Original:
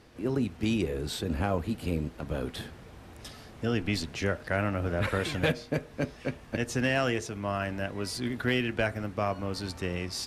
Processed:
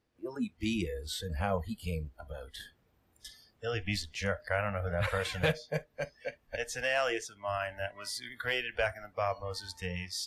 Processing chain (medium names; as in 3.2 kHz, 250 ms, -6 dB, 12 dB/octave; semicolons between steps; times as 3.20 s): spectral noise reduction 21 dB; 2.15–2.60 s: compression 2:1, threshold -42 dBFS, peak gain reduction 7 dB; trim -1.5 dB